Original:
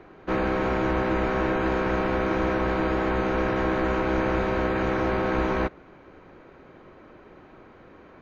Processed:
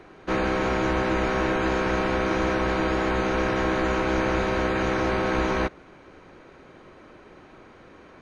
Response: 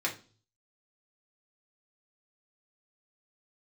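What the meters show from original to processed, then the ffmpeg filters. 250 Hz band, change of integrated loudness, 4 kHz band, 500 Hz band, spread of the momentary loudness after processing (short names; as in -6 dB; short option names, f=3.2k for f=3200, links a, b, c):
0.0 dB, +0.5 dB, +5.5 dB, 0.0 dB, 1 LU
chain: -af "aemphasis=mode=production:type=75kf" -ar 22050 -c:a mp2 -b:a 128k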